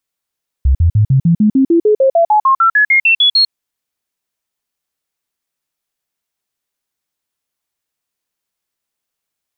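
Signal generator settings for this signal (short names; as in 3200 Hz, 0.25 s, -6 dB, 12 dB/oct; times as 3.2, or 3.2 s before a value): stepped sine 66.8 Hz up, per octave 3, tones 19, 0.10 s, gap 0.05 s -6.5 dBFS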